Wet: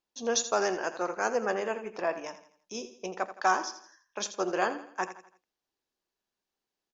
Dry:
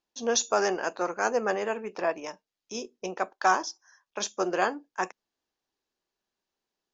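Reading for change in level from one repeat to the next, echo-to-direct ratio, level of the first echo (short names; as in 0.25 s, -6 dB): -7.5 dB, -11.5 dB, -12.5 dB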